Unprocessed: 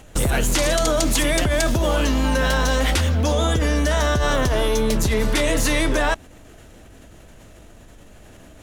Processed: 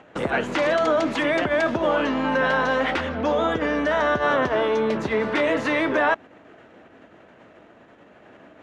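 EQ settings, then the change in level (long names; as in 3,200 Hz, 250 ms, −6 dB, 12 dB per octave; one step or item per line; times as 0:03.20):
band-pass filter 230–2,100 Hz
parametric band 1,500 Hz +3 dB 2.3 octaves
0.0 dB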